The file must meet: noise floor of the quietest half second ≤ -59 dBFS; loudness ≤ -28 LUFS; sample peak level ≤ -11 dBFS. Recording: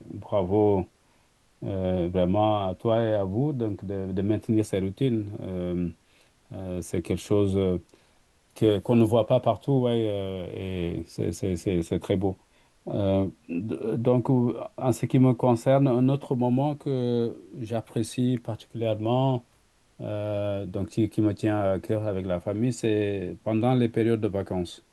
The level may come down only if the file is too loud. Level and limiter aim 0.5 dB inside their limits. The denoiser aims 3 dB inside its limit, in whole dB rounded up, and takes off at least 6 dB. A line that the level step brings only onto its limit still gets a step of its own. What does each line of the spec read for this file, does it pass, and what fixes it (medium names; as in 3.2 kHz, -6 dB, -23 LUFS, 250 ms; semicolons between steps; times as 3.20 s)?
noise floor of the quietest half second -63 dBFS: pass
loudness -26.5 LUFS: fail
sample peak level -8.5 dBFS: fail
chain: trim -2 dB; peak limiter -11.5 dBFS